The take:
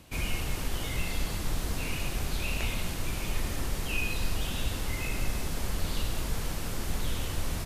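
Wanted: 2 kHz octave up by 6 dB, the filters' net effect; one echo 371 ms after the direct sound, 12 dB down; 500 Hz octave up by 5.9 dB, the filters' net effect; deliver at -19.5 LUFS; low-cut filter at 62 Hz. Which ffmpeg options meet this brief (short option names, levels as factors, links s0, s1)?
-af "highpass=62,equalizer=f=500:t=o:g=7,equalizer=f=2000:t=o:g=7.5,aecho=1:1:371:0.251,volume=3.98"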